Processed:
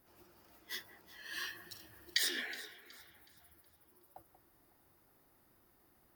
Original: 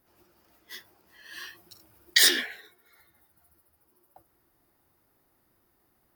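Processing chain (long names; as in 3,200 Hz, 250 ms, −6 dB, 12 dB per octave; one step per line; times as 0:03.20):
downward compressor 8 to 1, threshold −31 dBFS, peak gain reduction 16 dB
on a send: delay that swaps between a low-pass and a high-pass 185 ms, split 2,100 Hz, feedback 60%, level −13 dB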